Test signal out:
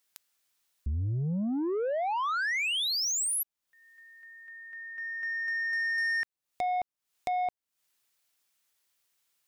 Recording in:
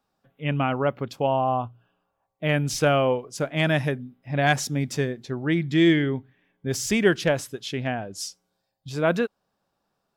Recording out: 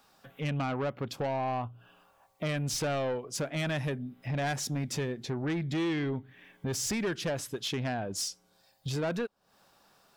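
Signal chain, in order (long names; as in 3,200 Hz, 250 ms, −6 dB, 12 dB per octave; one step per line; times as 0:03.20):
downward compressor 2.5 to 1, threshold −38 dBFS
soft clipping −33.5 dBFS
one half of a high-frequency compander encoder only
level +7 dB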